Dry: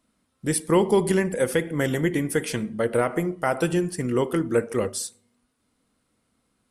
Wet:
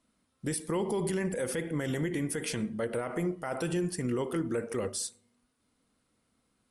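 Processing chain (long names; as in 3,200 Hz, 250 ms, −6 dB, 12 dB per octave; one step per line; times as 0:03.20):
Chebyshev low-pass filter 11,000 Hz, order 4
brickwall limiter −20.5 dBFS, peak gain reduction 10.5 dB
level −2.5 dB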